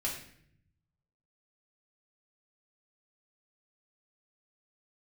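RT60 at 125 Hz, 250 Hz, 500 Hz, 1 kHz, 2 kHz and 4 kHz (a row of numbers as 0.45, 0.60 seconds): 1.5, 1.1, 0.70, 0.60, 0.65, 0.55 seconds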